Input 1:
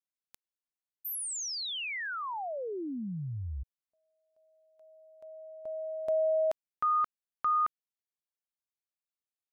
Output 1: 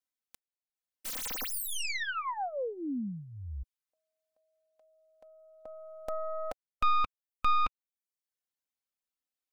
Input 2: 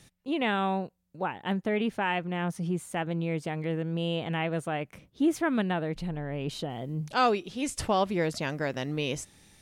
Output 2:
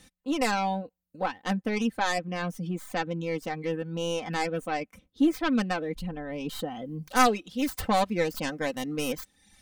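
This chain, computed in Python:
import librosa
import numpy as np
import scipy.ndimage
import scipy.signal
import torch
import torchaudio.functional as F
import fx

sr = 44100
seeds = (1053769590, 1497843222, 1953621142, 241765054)

y = fx.tracing_dist(x, sr, depth_ms=0.36)
y = fx.dereverb_blind(y, sr, rt60_s=0.65)
y = y + 0.67 * np.pad(y, (int(3.9 * sr / 1000.0), 0))[:len(y)]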